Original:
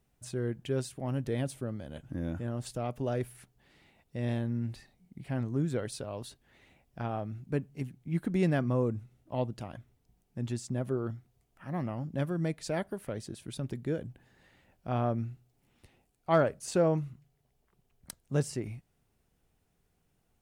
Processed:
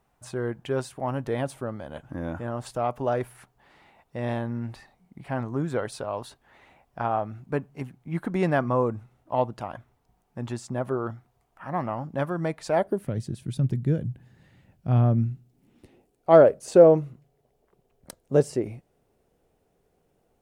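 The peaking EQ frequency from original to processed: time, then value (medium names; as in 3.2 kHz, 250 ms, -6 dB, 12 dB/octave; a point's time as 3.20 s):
peaking EQ +14 dB 1.8 oct
12.72 s 970 Hz
13.13 s 130 Hz
15.05 s 130 Hz
16.30 s 500 Hz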